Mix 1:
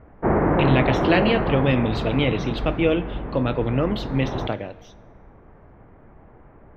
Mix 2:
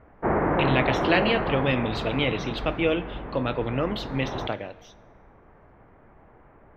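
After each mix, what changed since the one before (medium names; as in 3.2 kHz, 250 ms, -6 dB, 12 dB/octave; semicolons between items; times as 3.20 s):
master: add bass shelf 480 Hz -7 dB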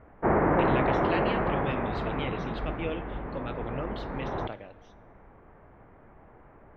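speech -10.0 dB; master: add treble shelf 6.9 kHz -11.5 dB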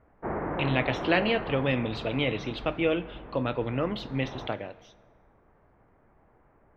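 speech +8.0 dB; background -8.5 dB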